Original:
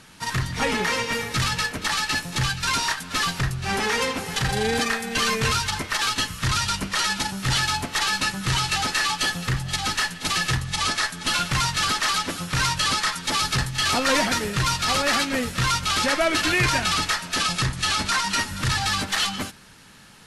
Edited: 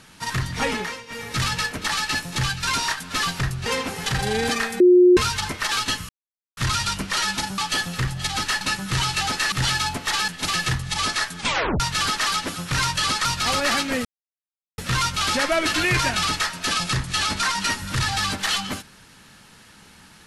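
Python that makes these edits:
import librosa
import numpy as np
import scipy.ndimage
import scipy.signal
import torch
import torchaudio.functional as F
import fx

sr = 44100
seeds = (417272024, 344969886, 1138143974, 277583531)

y = fx.edit(x, sr, fx.fade_down_up(start_s=0.66, length_s=0.75, db=-15.0, fade_s=0.35),
    fx.cut(start_s=3.66, length_s=0.3),
    fx.bleep(start_s=5.1, length_s=0.37, hz=359.0, db=-9.0),
    fx.insert_silence(at_s=6.39, length_s=0.48),
    fx.swap(start_s=7.4, length_s=0.76, other_s=9.07, other_length_s=1.03),
    fx.tape_stop(start_s=11.21, length_s=0.41),
    fx.cut(start_s=13.07, length_s=1.6),
    fx.insert_silence(at_s=15.47, length_s=0.73), tone=tone)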